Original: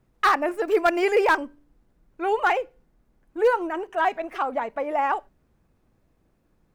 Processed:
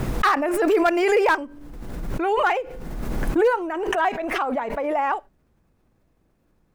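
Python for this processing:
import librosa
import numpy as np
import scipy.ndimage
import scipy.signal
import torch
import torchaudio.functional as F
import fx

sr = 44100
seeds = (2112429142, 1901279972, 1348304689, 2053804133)

y = fx.pre_swell(x, sr, db_per_s=28.0)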